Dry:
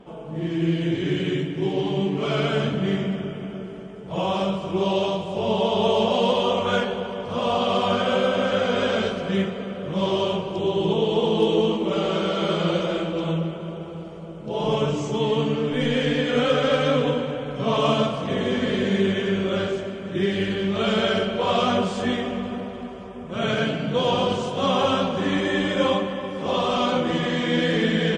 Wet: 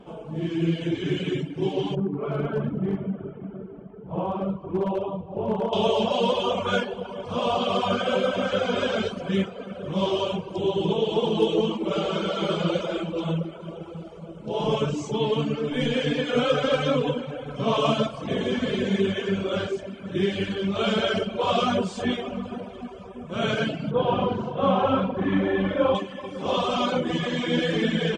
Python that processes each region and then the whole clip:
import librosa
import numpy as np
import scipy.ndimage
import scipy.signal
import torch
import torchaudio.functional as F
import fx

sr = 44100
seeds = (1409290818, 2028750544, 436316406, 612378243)

y = fx.chain(x, sr, fx.lowpass(hz=1100.0, slope=12),
    fx.peak_eq(hz=630.0, db=-4.0, octaves=0.51),
    fx.clip_hard(threshold_db=-17.0), at=(1.95, 5.73))
y = fx.chain(y, sr, fx.lowpass(hz=1900.0, slope=12),
    fx.room_flutter(wall_m=7.1, rt60_s=0.43), at=(23.91, 25.95))
y = fx.dereverb_blind(y, sr, rt60_s=1.0)
y = fx.notch(y, sr, hz=1900.0, q=10.0)